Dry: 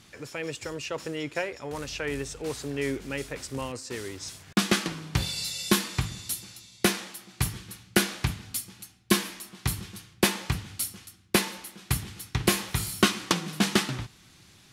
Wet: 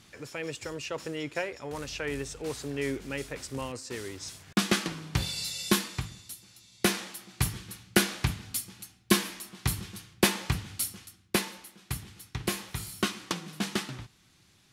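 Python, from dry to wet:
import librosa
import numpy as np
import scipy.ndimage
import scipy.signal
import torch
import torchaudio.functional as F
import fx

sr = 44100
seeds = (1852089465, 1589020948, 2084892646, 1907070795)

y = fx.gain(x, sr, db=fx.line((5.76, -2.0), (6.37, -12.0), (6.94, -0.5), (10.92, -0.5), (11.77, -7.5)))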